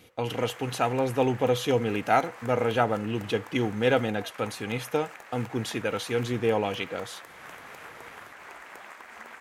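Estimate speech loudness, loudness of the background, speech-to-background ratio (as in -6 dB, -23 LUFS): -28.0 LUFS, -44.5 LUFS, 16.5 dB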